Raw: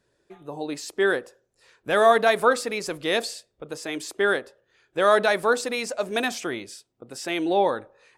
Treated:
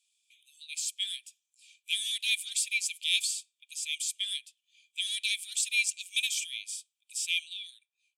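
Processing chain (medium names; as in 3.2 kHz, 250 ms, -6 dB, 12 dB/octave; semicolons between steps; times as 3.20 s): fade out at the end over 0.90 s; Chebyshev shaper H 6 -32 dB, 7 -42 dB, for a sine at -5.5 dBFS; rippled Chebyshev high-pass 2.3 kHz, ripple 9 dB; trim +8 dB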